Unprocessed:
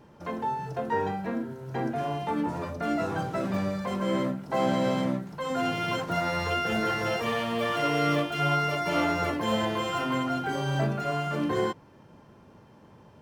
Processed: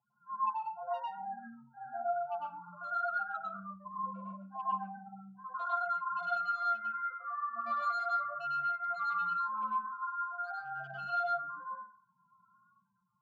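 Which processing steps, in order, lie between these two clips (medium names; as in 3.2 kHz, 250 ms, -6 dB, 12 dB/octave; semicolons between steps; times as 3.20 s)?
median filter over 9 samples; FFT filter 200 Hz 0 dB, 320 Hz -17 dB, 1.5 kHz +13 dB, 2.4 kHz -1 dB; flutter echo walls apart 8.8 m, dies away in 0.47 s; loudest bins only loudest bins 4; flange 0.2 Hz, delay 8.2 ms, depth 9.6 ms, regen +20%; rotary cabinet horn 8 Hz, later 0.65 Hz, at 5.44 s; hard clipper -27 dBFS, distortion -10 dB; vowel filter a; reverberation RT60 0.35 s, pre-delay 96 ms, DRR -5 dB; dynamic bell 720 Hz, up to -4 dB, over -50 dBFS, Q 3.8; trim +3 dB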